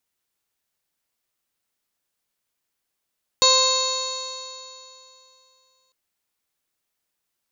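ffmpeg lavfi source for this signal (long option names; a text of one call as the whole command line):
ffmpeg -f lavfi -i "aevalsrc='0.0891*pow(10,-3*t/2.78)*sin(2*PI*518.47*t)+0.106*pow(10,-3*t/2.78)*sin(2*PI*1039.72*t)+0.0126*pow(10,-3*t/2.78)*sin(2*PI*1566.54*t)+0.0158*pow(10,-3*t/2.78)*sin(2*PI*2101.63*t)+0.0355*pow(10,-3*t/2.78)*sin(2*PI*2647.63*t)+0.0158*pow(10,-3*t/2.78)*sin(2*PI*3207.12*t)+0.119*pow(10,-3*t/2.78)*sin(2*PI*3782.53*t)+0.158*pow(10,-3*t/2.78)*sin(2*PI*4376.19*t)+0.0224*pow(10,-3*t/2.78)*sin(2*PI*4990.3*t)+0.0251*pow(10,-3*t/2.78)*sin(2*PI*5626.92*t)+0.0501*pow(10,-3*t/2.78)*sin(2*PI*6287.97*t)+0.0944*pow(10,-3*t/2.78)*sin(2*PI*6975.23*t)':duration=2.5:sample_rate=44100" out.wav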